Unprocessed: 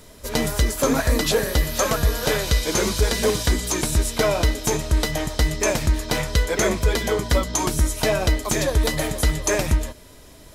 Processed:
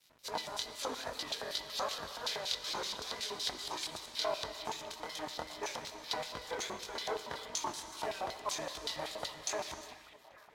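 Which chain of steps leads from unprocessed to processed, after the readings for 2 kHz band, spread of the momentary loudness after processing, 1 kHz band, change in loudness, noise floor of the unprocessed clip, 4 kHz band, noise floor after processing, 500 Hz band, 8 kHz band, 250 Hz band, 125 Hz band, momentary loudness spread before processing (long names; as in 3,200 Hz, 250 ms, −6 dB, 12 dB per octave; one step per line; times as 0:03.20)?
−17.5 dB, 6 LU, −11.5 dB, −17.0 dB, −46 dBFS, −10.0 dB, −58 dBFS, −18.5 dB, −17.5 dB, −25.5 dB, −34.5 dB, 3 LU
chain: parametric band 700 Hz −2.5 dB 1.1 octaves
downward compressor 5 to 1, threshold −25 dBFS, peak gain reduction 11 dB
chorus effect 2.5 Hz, delay 18.5 ms, depth 7.4 ms
mains hum 50 Hz, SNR 10 dB
auto-filter band-pass square 5.3 Hz 880–4,000 Hz
dead-zone distortion −59 dBFS
echo through a band-pass that steps 418 ms, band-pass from 2,500 Hz, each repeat −0.7 octaves, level −11 dB
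reverb whose tail is shaped and stops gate 380 ms flat, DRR 10.5 dB
level +5 dB
Ogg Vorbis 64 kbit/s 48,000 Hz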